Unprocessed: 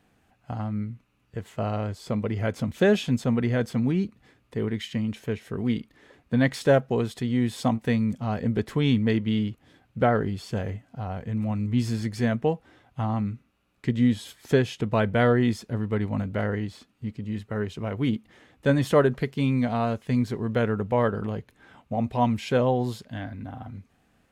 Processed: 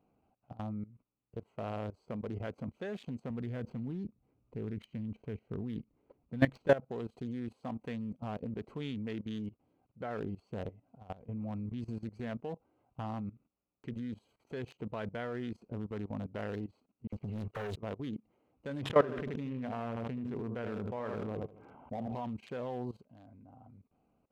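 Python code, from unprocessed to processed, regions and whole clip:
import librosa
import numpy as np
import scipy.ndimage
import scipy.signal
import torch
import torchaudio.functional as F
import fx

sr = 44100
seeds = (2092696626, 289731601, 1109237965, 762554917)

y = fx.chain(x, sr, fx.median_filter(points=5),
    fx.low_shelf(hz=190.0, db=12.0), at=(3.3, 6.68))
y = fx.chain(y, sr, fx.comb(ms=1.8, depth=0.46),
    fx.dispersion(late='lows', ms=56.0, hz=2200.0),
    fx.leveller(passes=3), at=(17.07, 17.76))
y = fx.chain(y, sr, fx.savgol(points=25),
    fx.echo_feedback(ms=78, feedback_pct=37, wet_db=-9.0),
    fx.sustainer(db_per_s=28.0), at=(18.82, 22.15))
y = fx.wiener(y, sr, points=25)
y = fx.low_shelf(y, sr, hz=210.0, db=-9.0)
y = fx.level_steps(y, sr, step_db=18)
y = y * librosa.db_to_amplitude(-2.0)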